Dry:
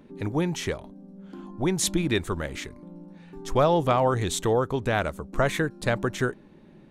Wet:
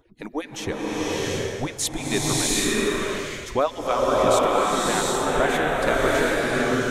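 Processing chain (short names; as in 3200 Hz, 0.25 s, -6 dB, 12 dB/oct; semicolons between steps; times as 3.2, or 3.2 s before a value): median-filter separation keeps percussive; bloom reverb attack 0.73 s, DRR -6.5 dB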